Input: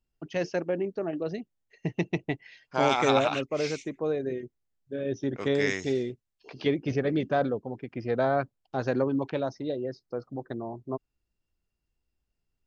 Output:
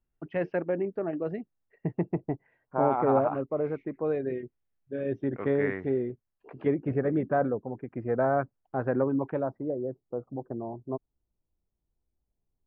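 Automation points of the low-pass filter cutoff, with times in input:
low-pass filter 24 dB per octave
0:01.28 2,200 Hz
0:02.32 1,200 Hz
0:03.60 1,200 Hz
0:04.17 2,600 Hz
0:04.96 2,600 Hz
0:05.67 1,700 Hz
0:09.32 1,700 Hz
0:09.84 1,000 Hz

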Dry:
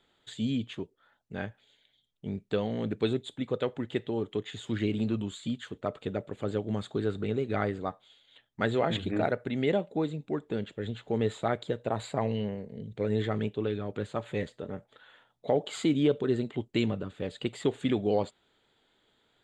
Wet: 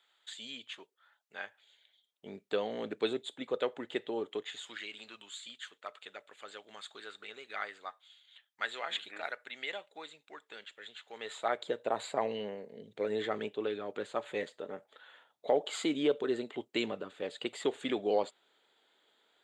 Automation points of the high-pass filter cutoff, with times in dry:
0:01.40 1,000 Hz
0:02.41 420 Hz
0:04.31 420 Hz
0:04.83 1,400 Hz
0:11.12 1,400 Hz
0:11.67 410 Hz

